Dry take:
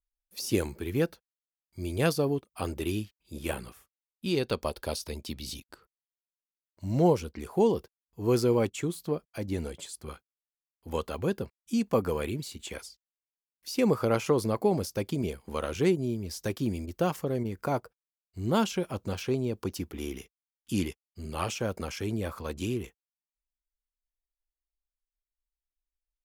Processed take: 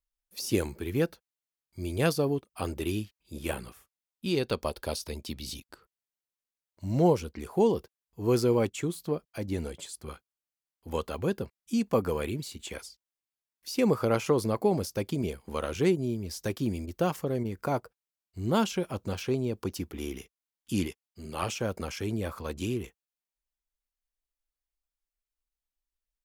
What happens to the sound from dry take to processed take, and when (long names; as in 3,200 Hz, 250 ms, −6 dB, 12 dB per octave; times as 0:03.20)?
0:20.87–0:21.43: high-pass filter 140 Hz 6 dB per octave